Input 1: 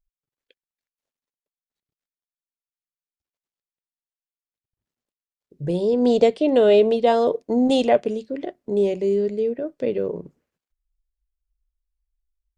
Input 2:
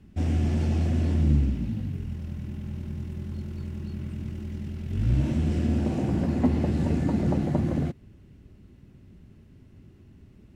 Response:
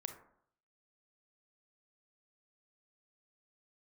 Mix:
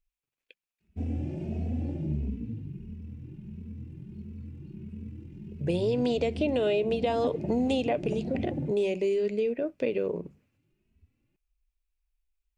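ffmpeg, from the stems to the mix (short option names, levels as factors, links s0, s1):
-filter_complex "[0:a]bandreject=f=50:t=h:w=6,bandreject=f=100:t=h:w=6,bandreject=f=150:t=h:w=6,bandreject=f=200:t=h:w=6,alimiter=limit=0.299:level=0:latency=1:release=203,volume=0.891[s0];[1:a]afwtdn=0.0282,lowshelf=f=110:g=-9,asplit=2[s1][s2];[s2]adelay=2.8,afreqshift=1.5[s3];[s1][s3]amix=inputs=2:normalize=1,adelay=800,volume=0.944[s4];[s0][s4]amix=inputs=2:normalize=0,equalizer=f=2500:w=3.4:g=10.5,acrossover=split=1200|4500[s5][s6][s7];[s5]acompressor=threshold=0.0562:ratio=4[s8];[s6]acompressor=threshold=0.01:ratio=4[s9];[s7]acompressor=threshold=0.00282:ratio=4[s10];[s8][s9][s10]amix=inputs=3:normalize=0"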